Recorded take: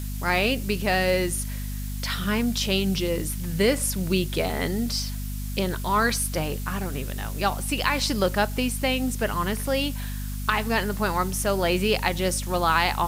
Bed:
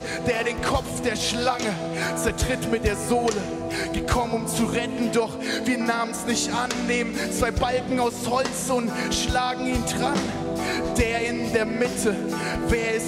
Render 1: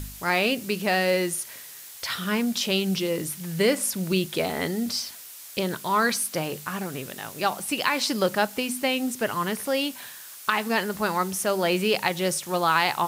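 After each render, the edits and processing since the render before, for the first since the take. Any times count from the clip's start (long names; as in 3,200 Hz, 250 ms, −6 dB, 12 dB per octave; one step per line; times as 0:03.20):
hum removal 50 Hz, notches 5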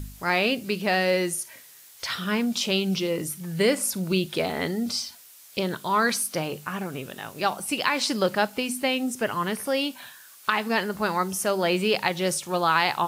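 noise reduction from a noise print 7 dB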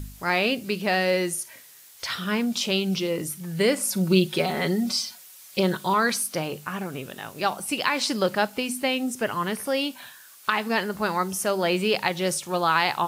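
0:03.90–0:05.94: comb filter 5.4 ms, depth 87%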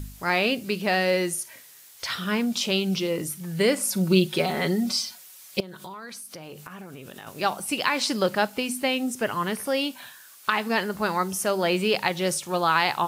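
0:05.60–0:07.27: downward compressor 12 to 1, threshold −36 dBFS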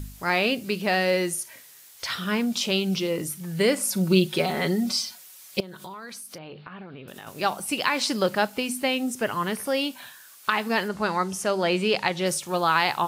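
0:06.38–0:07.08: Butterworth low-pass 4,400 Hz 72 dB per octave
0:10.88–0:12.26: low-pass filter 8,600 Hz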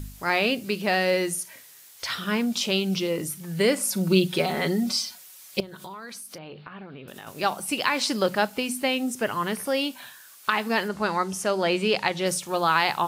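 mains-hum notches 60/120/180 Hz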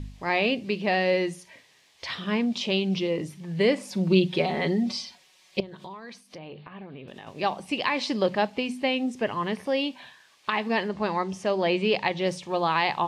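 low-pass filter 3,600 Hz 12 dB per octave
parametric band 1,400 Hz −13.5 dB 0.27 octaves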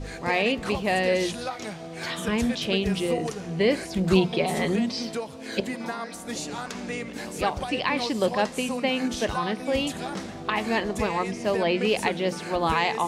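mix in bed −9.5 dB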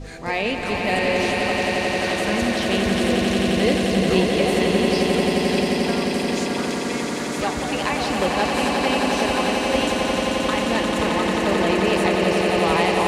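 echo that builds up and dies away 88 ms, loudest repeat 8, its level −6 dB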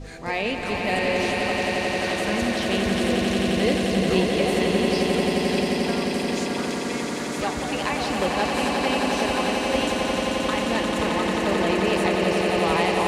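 level −2.5 dB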